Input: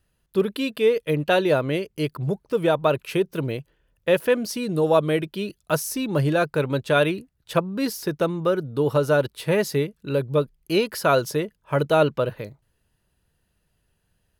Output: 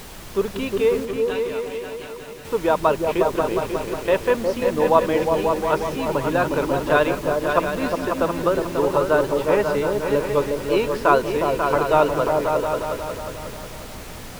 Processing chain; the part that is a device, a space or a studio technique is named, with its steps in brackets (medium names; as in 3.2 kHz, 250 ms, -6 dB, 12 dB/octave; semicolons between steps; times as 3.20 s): horn gramophone (band-pass 250–3000 Hz; peaking EQ 970 Hz +10 dB 0.4 oct; wow and flutter; pink noise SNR 15 dB); 1.05–2.45 s: amplifier tone stack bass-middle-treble 5-5-5; delay with an opening low-pass 180 ms, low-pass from 200 Hz, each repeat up 2 oct, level 0 dB